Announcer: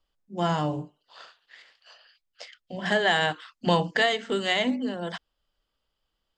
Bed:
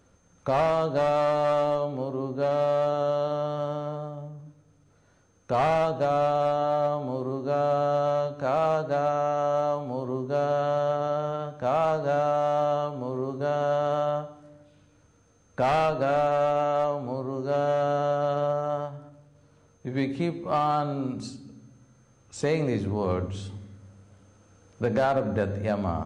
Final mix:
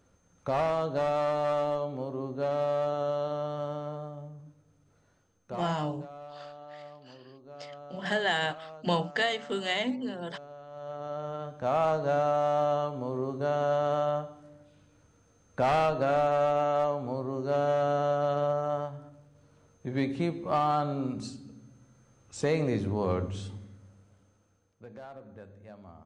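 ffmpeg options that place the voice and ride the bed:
-filter_complex "[0:a]adelay=5200,volume=-5dB[a];[1:a]volume=15dB,afade=t=out:st=5:d=0.76:silence=0.141254,afade=t=in:st=10.7:d=1.11:silence=0.105925,afade=t=out:st=23.44:d=1.37:silence=0.1[b];[a][b]amix=inputs=2:normalize=0"

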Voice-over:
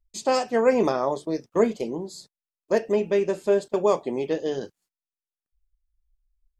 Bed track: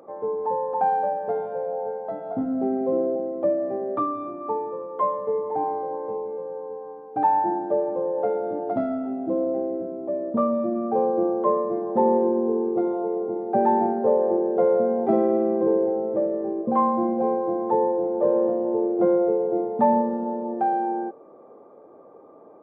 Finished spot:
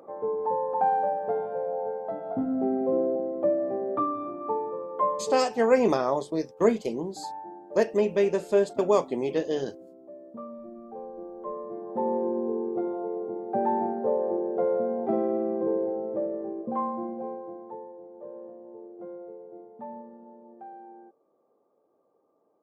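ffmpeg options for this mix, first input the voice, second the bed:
-filter_complex "[0:a]adelay=5050,volume=-1dB[a];[1:a]volume=10dB,afade=t=out:st=5.12:d=0.43:silence=0.158489,afade=t=in:st=11.31:d=1.06:silence=0.251189,afade=t=out:st=16.31:d=1.54:silence=0.16788[b];[a][b]amix=inputs=2:normalize=0"

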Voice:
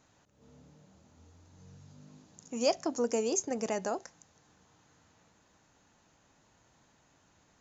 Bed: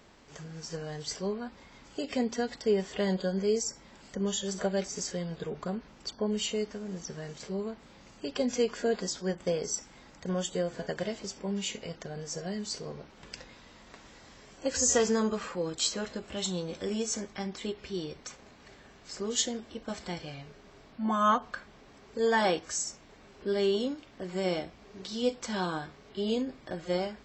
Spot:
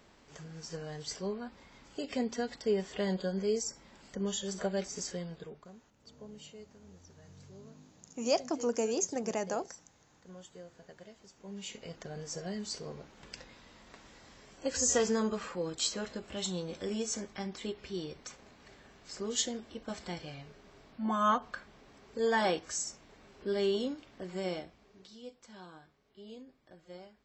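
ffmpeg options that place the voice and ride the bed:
-filter_complex "[0:a]adelay=5650,volume=-1dB[a];[1:a]volume=12.5dB,afade=t=out:st=5.12:d=0.56:silence=0.16788,afade=t=in:st=11.32:d=0.79:silence=0.158489,afade=t=out:st=24.12:d=1.1:silence=0.158489[b];[a][b]amix=inputs=2:normalize=0"

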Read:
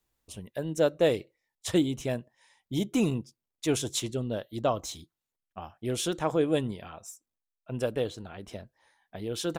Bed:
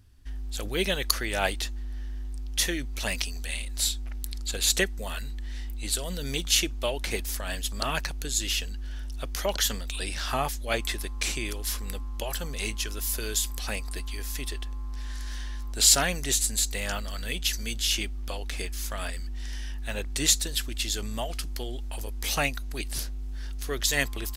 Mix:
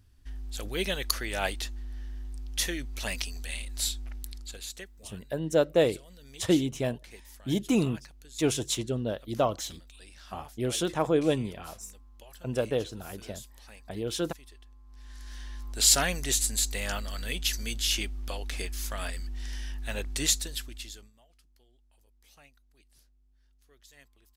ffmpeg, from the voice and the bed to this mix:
-filter_complex "[0:a]adelay=4750,volume=1dB[a];[1:a]volume=14dB,afade=t=out:st=4.1:d=0.62:silence=0.16788,afade=t=in:st=14.85:d=1.13:silence=0.133352,afade=t=out:st=20.09:d=1.03:silence=0.0334965[b];[a][b]amix=inputs=2:normalize=0"

